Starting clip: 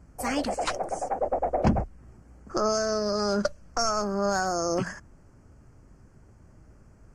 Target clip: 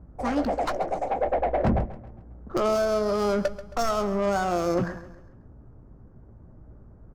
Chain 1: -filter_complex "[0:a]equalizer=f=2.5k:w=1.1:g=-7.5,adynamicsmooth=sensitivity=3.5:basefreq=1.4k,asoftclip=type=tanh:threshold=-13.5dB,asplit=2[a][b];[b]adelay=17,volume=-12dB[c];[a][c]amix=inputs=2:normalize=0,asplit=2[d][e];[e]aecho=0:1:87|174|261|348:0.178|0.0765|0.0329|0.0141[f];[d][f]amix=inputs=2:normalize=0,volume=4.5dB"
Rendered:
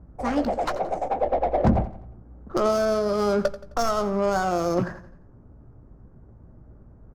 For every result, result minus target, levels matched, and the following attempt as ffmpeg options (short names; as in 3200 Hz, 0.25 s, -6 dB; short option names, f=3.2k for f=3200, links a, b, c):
soft clip: distortion -11 dB; echo 48 ms early
-filter_complex "[0:a]equalizer=f=2.5k:w=1.1:g=-7.5,adynamicsmooth=sensitivity=3.5:basefreq=1.4k,asoftclip=type=tanh:threshold=-22dB,asplit=2[a][b];[b]adelay=17,volume=-12dB[c];[a][c]amix=inputs=2:normalize=0,asplit=2[d][e];[e]aecho=0:1:87|174|261|348:0.178|0.0765|0.0329|0.0141[f];[d][f]amix=inputs=2:normalize=0,volume=4.5dB"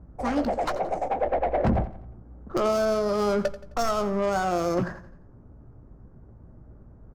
echo 48 ms early
-filter_complex "[0:a]equalizer=f=2.5k:w=1.1:g=-7.5,adynamicsmooth=sensitivity=3.5:basefreq=1.4k,asoftclip=type=tanh:threshold=-22dB,asplit=2[a][b];[b]adelay=17,volume=-12dB[c];[a][c]amix=inputs=2:normalize=0,asplit=2[d][e];[e]aecho=0:1:135|270|405|540:0.178|0.0765|0.0329|0.0141[f];[d][f]amix=inputs=2:normalize=0,volume=4.5dB"